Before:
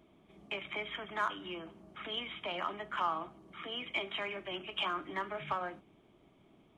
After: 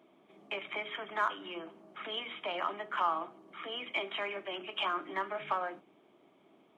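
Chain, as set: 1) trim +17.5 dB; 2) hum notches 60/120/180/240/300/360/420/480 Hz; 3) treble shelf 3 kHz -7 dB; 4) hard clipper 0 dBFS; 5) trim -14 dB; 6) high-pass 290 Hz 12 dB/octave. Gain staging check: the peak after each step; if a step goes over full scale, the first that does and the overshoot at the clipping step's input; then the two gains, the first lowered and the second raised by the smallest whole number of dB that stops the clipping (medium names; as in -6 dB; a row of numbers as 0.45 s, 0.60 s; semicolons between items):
-3.0 dBFS, -2.5 dBFS, -4.0 dBFS, -4.0 dBFS, -18.0 dBFS, -17.5 dBFS; nothing clips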